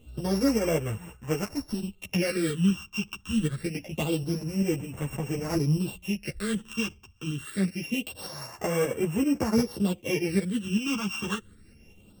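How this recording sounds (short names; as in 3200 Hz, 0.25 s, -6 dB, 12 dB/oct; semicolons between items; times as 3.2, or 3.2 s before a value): a buzz of ramps at a fixed pitch in blocks of 16 samples; phasing stages 8, 0.25 Hz, lowest notch 570–4400 Hz; tremolo saw up 5.2 Hz, depth 45%; a shimmering, thickened sound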